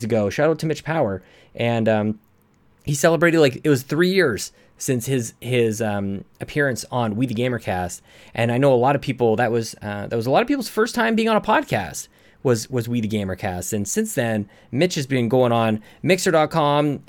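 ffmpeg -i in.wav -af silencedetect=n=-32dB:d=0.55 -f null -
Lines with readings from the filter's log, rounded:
silence_start: 2.13
silence_end: 2.87 | silence_duration: 0.74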